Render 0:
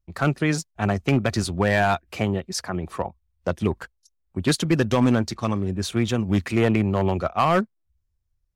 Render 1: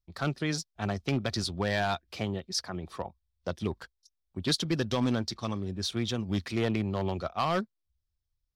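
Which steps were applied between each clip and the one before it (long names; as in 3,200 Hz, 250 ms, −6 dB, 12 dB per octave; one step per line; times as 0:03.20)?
flat-topped bell 4,300 Hz +8.5 dB 1 octave
level −9 dB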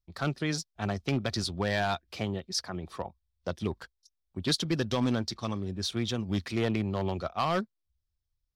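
no processing that can be heard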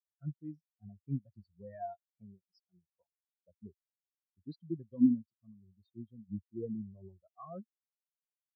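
every bin expanded away from the loudest bin 4 to 1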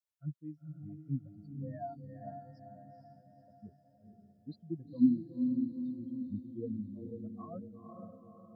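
notch comb filter 390 Hz
feedback delay with all-pass diffusion 480 ms, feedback 50%, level −4 dB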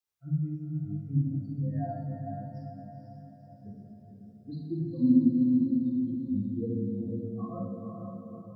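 convolution reverb RT60 1.7 s, pre-delay 3 ms, DRR −1.5 dB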